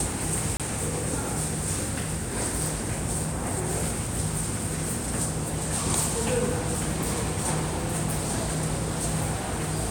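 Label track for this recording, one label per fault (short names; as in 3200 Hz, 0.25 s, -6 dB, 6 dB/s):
0.570000	0.600000	gap 27 ms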